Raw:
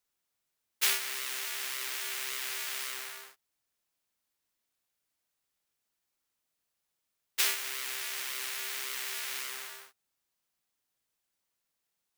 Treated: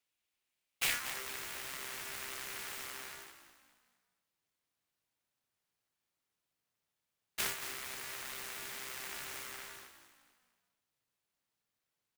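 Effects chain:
dynamic equaliser 4,300 Hz, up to −7 dB, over −46 dBFS, Q 0.7
high-pass filter sweep 2,500 Hz → 110 Hz, 0:00.86–0:01.47
on a send: echo with shifted repeats 229 ms, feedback 41%, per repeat −53 Hz, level −11 dB
on the sum: short delay modulated by noise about 5,100 Hz, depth 0.034 ms
level −3.5 dB

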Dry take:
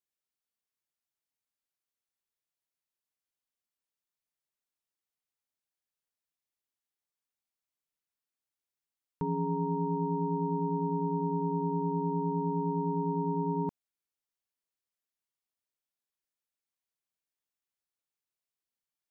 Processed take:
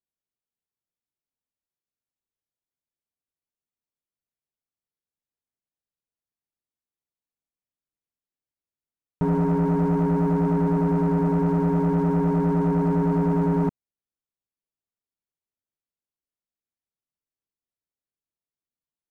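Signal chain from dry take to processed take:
tilt shelving filter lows +8 dB, about 780 Hz
leveller curve on the samples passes 2

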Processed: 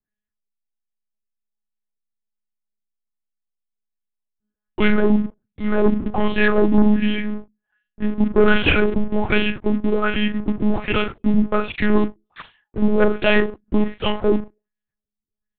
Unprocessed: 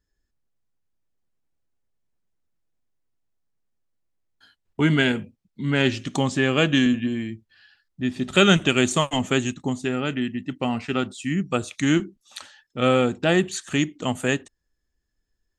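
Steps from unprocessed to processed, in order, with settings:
on a send: flutter between parallel walls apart 7.7 metres, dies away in 0.34 s
on the sum: auto-filter low-pass sine 1.3 Hz 230–3,000 Hz
leveller curve on the samples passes 3
one-pitch LPC vocoder at 8 kHz 210 Hz
level −6.5 dB

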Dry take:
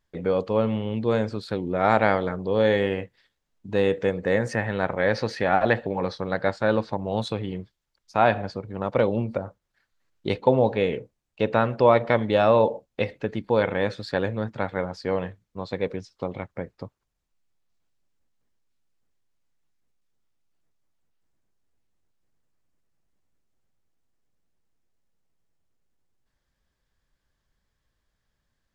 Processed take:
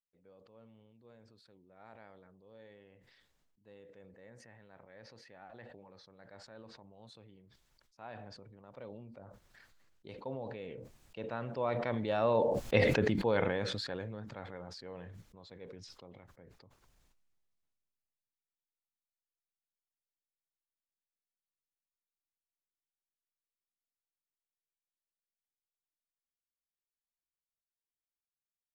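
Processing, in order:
source passing by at 0:12.84, 7 m/s, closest 1.5 metres
level that may fall only so fast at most 23 dB per second
level −2.5 dB

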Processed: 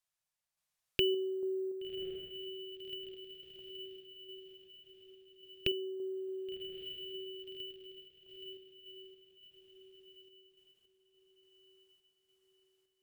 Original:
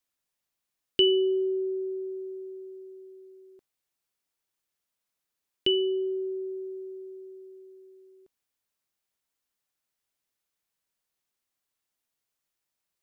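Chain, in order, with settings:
drawn EQ curve 180 Hz 0 dB, 260 Hz −17 dB, 620 Hz −1 dB
feedback delay with all-pass diffusion 1,115 ms, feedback 46%, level −8 dB
sample-and-hold tremolo
treble cut that deepens with the level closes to 1,700 Hz, closed at −38.5 dBFS
bad sample-rate conversion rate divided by 2×, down none, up hold
every ending faded ahead of time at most 230 dB per second
level +2.5 dB

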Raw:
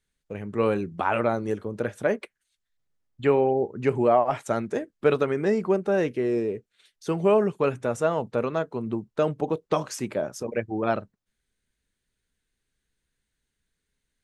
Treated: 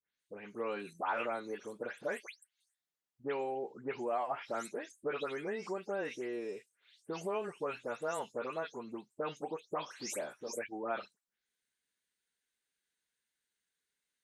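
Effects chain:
every frequency bin delayed by itself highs late, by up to 192 ms
downward compressor 2.5 to 1, threshold −24 dBFS, peak gain reduction 6.5 dB
high-pass filter 890 Hz 6 dB per octave
level −4 dB

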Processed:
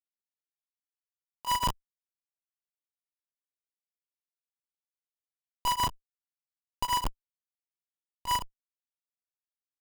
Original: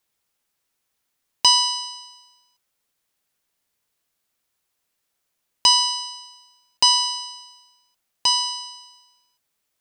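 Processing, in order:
inverse Chebyshev low-pass filter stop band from 7,100 Hz, stop band 50 dB
comparator with hysteresis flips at −25 dBFS
tremolo along a rectified sine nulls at 7.2 Hz
level +8 dB

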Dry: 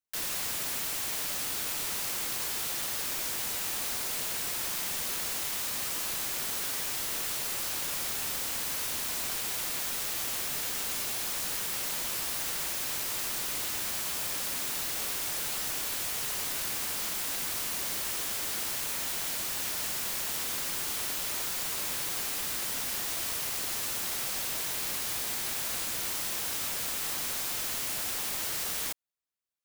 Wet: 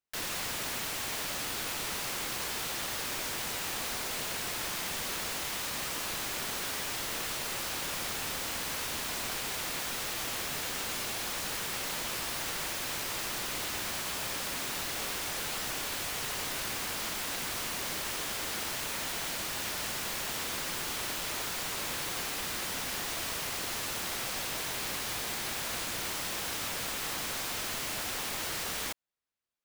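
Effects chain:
high-shelf EQ 5,900 Hz −9.5 dB
level +3 dB

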